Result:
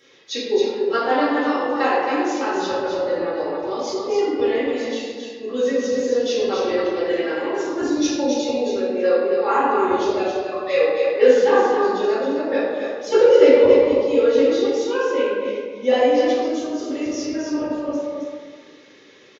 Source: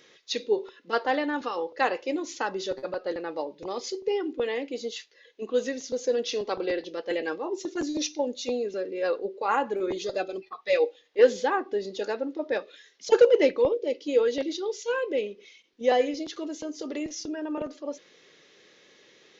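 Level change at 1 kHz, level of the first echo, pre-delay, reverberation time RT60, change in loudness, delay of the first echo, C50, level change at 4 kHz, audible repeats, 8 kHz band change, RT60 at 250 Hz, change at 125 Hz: +8.5 dB, -4.5 dB, 3 ms, 1.6 s, +8.5 dB, 269 ms, -3.0 dB, +6.0 dB, 1, no reading, 2.0 s, no reading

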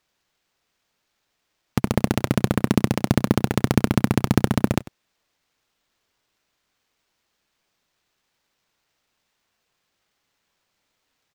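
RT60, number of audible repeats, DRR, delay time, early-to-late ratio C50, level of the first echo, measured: no reverb, 1, no reverb, 97 ms, no reverb, -19.0 dB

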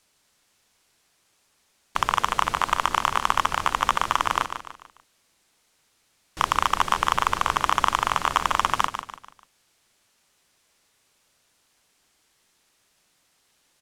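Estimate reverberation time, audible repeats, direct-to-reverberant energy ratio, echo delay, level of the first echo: no reverb, 4, no reverb, 147 ms, -9.0 dB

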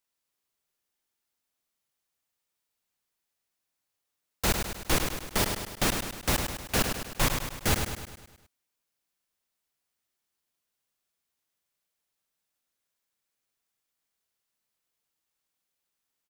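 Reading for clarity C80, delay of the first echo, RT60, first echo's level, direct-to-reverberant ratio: no reverb, 103 ms, no reverb, -6.0 dB, no reverb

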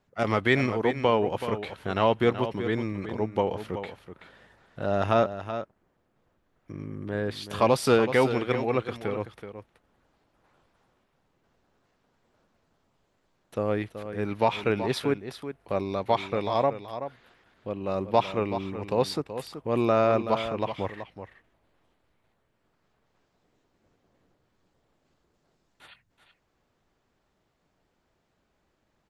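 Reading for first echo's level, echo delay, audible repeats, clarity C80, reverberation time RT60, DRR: -10.5 dB, 378 ms, 1, no reverb, no reverb, no reverb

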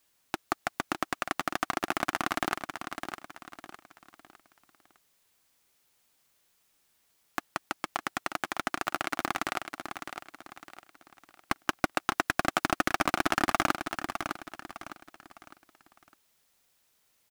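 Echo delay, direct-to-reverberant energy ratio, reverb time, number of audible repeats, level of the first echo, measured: 607 ms, no reverb, no reverb, 4, -8.0 dB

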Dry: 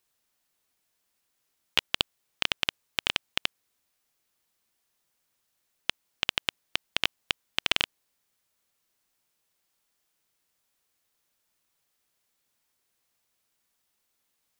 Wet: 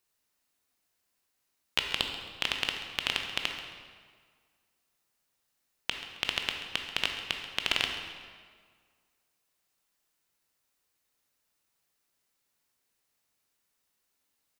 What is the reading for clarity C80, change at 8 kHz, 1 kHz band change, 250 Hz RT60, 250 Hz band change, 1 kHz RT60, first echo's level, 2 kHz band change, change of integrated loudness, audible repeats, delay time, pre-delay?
6.0 dB, -2.0 dB, -1.5 dB, 1.8 s, -1.0 dB, 1.8 s, -14.5 dB, -1.5 dB, -2.0 dB, 1, 134 ms, 15 ms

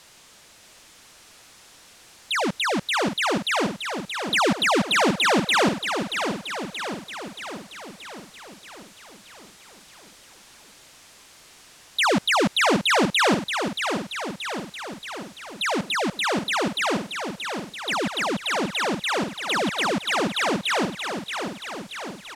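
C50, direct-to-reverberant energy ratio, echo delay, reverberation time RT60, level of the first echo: no reverb, no reverb, 628 ms, no reverb, -7.0 dB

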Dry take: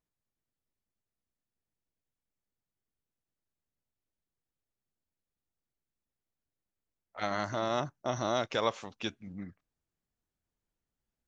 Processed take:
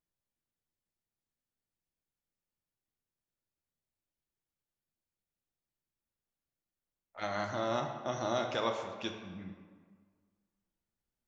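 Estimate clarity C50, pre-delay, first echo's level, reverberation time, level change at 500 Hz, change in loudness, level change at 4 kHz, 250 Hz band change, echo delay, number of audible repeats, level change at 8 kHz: 5.5 dB, 3 ms, no echo, 1.7 s, -1.5 dB, -2.0 dB, -2.5 dB, -2.0 dB, no echo, no echo, no reading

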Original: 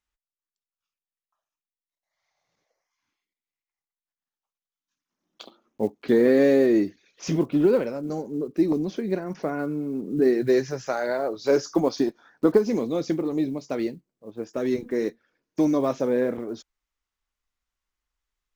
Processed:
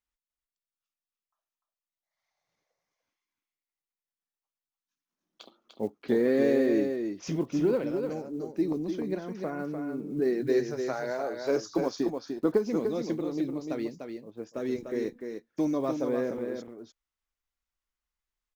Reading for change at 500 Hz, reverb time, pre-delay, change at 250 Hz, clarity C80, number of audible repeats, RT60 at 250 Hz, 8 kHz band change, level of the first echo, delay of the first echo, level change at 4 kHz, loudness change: -5.5 dB, no reverb, no reverb, -5.5 dB, no reverb, 1, no reverb, no reading, -6.0 dB, 297 ms, -5.5 dB, -5.5 dB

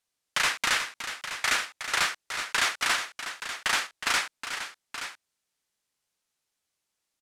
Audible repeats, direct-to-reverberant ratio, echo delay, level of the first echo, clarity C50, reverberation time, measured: 2, no reverb, 366 ms, -10.0 dB, no reverb, no reverb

